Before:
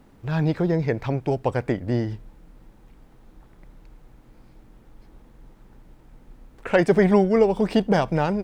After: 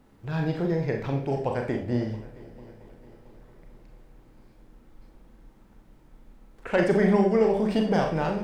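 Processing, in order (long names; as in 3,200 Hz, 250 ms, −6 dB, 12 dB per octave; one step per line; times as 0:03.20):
echo machine with several playback heads 224 ms, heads second and third, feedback 55%, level −22 dB
on a send at −2 dB: convolution reverb RT60 0.45 s, pre-delay 29 ms
on the sum: level −5.5 dB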